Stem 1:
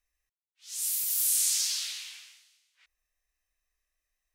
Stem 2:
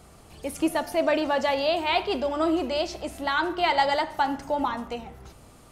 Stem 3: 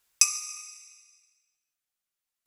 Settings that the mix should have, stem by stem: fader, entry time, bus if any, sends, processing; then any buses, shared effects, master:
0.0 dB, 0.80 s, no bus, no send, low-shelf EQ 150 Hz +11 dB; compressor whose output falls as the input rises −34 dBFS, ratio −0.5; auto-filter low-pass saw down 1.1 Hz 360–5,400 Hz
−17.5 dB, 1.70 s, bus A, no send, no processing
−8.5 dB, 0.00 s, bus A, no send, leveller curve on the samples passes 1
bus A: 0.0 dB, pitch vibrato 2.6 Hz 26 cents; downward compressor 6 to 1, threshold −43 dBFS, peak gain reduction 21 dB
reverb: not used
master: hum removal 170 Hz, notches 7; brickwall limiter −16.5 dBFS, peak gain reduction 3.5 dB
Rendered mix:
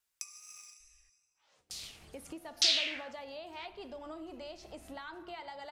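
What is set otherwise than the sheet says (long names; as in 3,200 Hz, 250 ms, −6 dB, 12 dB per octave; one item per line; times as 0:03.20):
stem 2 −17.5 dB → −9.5 dB
master: missing brickwall limiter −16.5 dBFS, peak gain reduction 3.5 dB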